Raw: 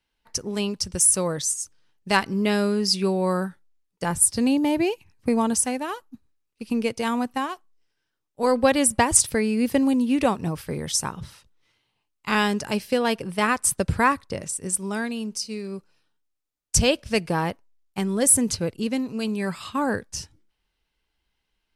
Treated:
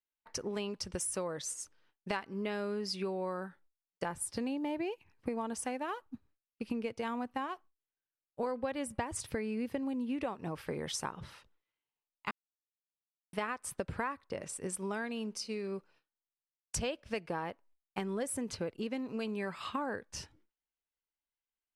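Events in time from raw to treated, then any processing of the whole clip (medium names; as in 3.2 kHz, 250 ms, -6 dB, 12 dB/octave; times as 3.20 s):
6.06–10.24 s: peaking EQ 91 Hz +8 dB 2 oct
12.31–13.33 s: mute
whole clip: gate with hold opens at -55 dBFS; tone controls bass -9 dB, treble -13 dB; compression 6:1, threshold -34 dBFS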